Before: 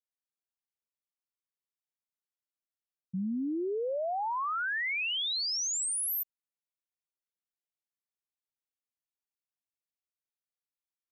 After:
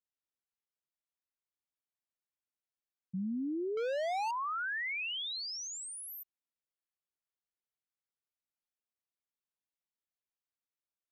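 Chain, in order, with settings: treble shelf 5.4 kHz -11.5 dB; 3.77–4.31 s: waveshaping leveller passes 3; trim -3 dB

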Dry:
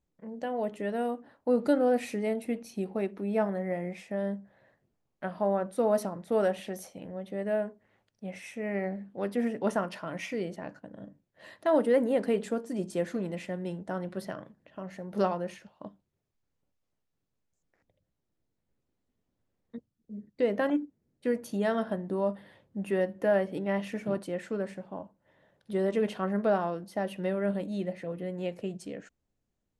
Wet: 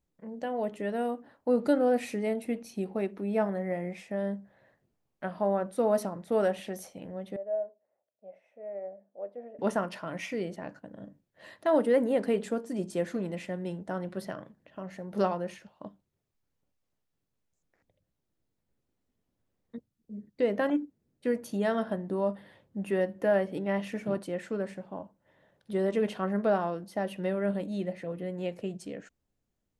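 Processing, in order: 7.36–9.59 s: band-pass filter 610 Hz, Q 5.8

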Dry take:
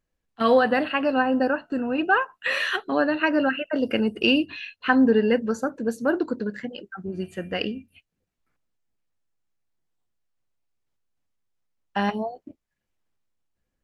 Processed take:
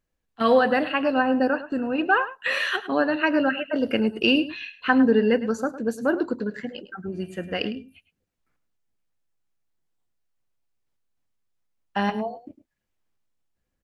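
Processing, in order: echo from a far wall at 18 m, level -14 dB

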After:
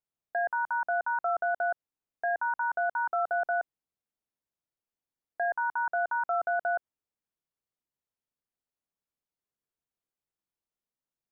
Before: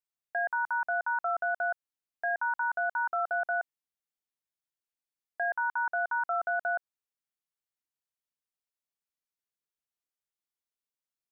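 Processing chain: tilt shelf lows +6.5 dB, about 1.2 kHz

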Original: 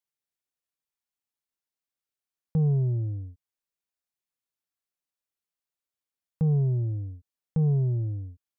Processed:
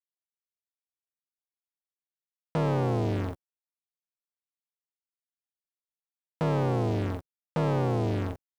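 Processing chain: octave divider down 2 oct, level -4 dB; expander -39 dBFS; waveshaping leveller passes 5; high-pass 790 Hz 6 dB/octave; saturation -26 dBFS, distortion -11 dB; trim +9 dB

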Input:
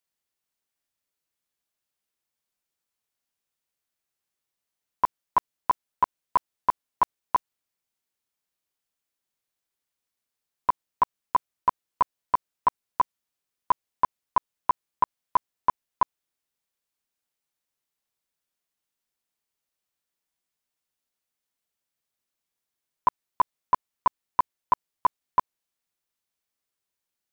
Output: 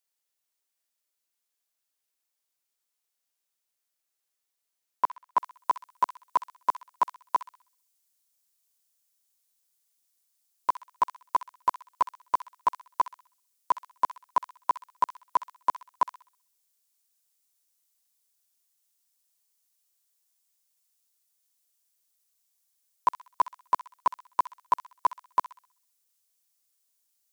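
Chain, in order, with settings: tone controls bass -12 dB, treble +5 dB, from 5.37 s treble +14 dB; feedback echo behind a high-pass 64 ms, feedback 37%, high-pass 1.7 kHz, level -9 dB; trim -2 dB

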